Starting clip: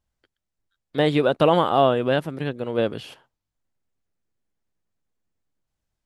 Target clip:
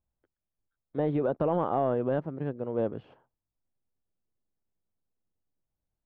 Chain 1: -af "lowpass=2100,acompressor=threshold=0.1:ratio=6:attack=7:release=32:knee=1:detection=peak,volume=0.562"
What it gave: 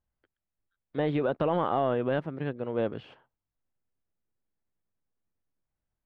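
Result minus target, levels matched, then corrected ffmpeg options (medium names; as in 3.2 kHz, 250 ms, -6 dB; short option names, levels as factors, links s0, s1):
2 kHz band +7.0 dB
-af "lowpass=1000,acompressor=threshold=0.1:ratio=6:attack=7:release=32:knee=1:detection=peak,volume=0.562"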